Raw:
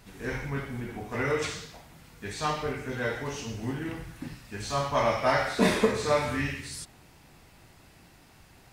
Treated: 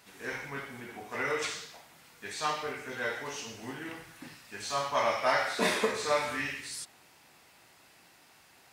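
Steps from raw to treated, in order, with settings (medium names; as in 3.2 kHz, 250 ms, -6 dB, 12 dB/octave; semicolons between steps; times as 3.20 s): high-pass 700 Hz 6 dB/octave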